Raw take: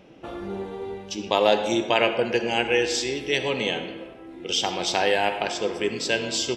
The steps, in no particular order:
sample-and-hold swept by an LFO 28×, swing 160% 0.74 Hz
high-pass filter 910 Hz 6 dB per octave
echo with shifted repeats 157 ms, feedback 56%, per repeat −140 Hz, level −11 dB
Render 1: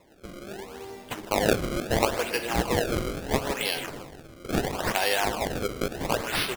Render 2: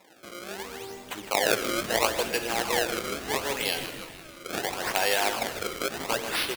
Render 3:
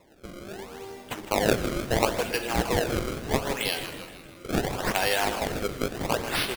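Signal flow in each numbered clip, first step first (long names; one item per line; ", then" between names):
high-pass filter, then echo with shifted repeats, then sample-and-hold swept by an LFO
sample-and-hold swept by an LFO, then high-pass filter, then echo with shifted repeats
high-pass filter, then sample-and-hold swept by an LFO, then echo with shifted repeats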